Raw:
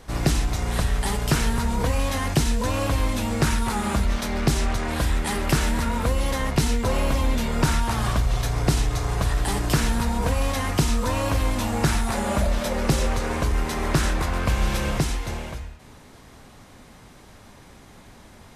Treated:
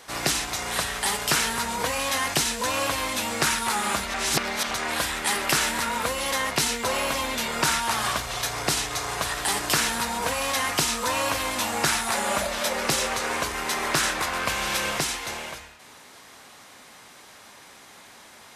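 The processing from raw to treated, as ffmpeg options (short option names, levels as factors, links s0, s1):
-filter_complex "[0:a]asplit=3[s0][s1][s2];[s0]atrim=end=4.142[s3];[s1]atrim=start=4.138:end=4.712,asetpts=PTS-STARTPTS,areverse[s4];[s2]atrim=start=4.708[s5];[s3][s4]acrossfade=d=0.004:c1=hsin:c2=hsin[s6];[s6][s5]acrossfade=d=0.004:c1=hsin:c2=hsin,highpass=f=1200:p=1,volume=2"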